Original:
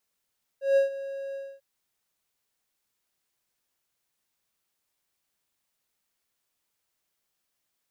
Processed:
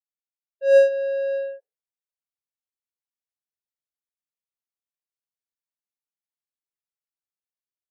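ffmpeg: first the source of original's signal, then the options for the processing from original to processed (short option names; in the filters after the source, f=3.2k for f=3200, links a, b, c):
-f lavfi -i "aevalsrc='0.188*(1-4*abs(mod(548*t+0.25,1)-0.5))':d=0.994:s=44100,afade=t=in:d=0.155,afade=t=out:st=0.155:d=0.128:silence=0.158,afade=t=out:st=0.74:d=0.254"
-af "afftdn=nr=35:nf=-56,dynaudnorm=f=270:g=5:m=12dB"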